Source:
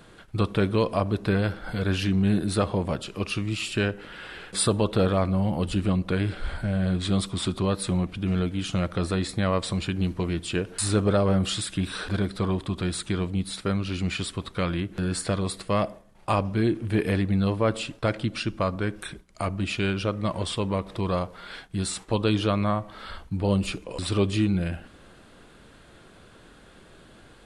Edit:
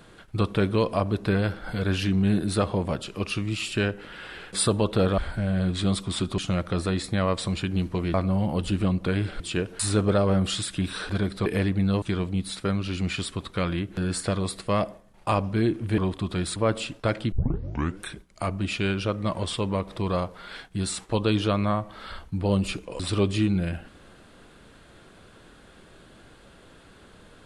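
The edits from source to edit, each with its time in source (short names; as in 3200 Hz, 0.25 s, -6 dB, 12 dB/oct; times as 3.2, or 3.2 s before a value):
5.18–6.44 move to 10.39
7.64–8.63 cut
12.45–13.03 swap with 16.99–17.55
18.31 tape start 0.69 s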